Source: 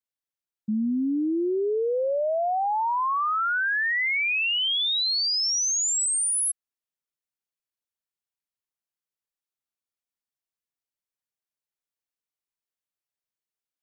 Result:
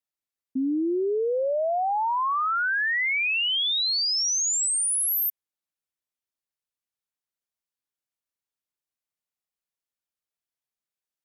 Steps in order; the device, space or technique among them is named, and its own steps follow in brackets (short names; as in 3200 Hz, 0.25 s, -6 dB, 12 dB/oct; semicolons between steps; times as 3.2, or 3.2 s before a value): nightcore (varispeed +23%)